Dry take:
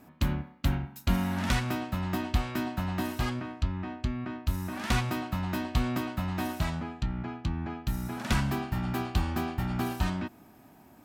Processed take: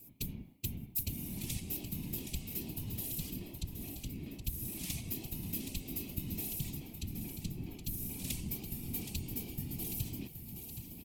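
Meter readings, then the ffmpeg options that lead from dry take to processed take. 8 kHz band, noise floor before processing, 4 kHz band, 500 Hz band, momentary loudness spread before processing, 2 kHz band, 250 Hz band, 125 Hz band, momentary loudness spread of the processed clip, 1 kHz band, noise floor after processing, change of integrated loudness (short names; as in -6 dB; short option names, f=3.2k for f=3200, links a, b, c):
+2.5 dB, -56 dBFS, -7.5 dB, -14.0 dB, 6 LU, -16.5 dB, -11.0 dB, -10.5 dB, 5 LU, -26.5 dB, -51 dBFS, -8.0 dB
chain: -af "acompressor=threshold=-32dB:ratio=6,firequalizer=gain_entry='entry(150,0);entry(460,-10);entry(1500,-29);entry(2300,-3);entry(11000,11)':delay=0.05:min_phase=1,crystalizer=i=1:c=0,aecho=1:1:771|1542|2313|3084|3855:0.398|0.179|0.0806|0.0363|0.0163,afftfilt=real='hypot(re,im)*cos(2*PI*random(0))':imag='hypot(re,im)*sin(2*PI*random(1))':win_size=512:overlap=0.75,volume=1.5dB"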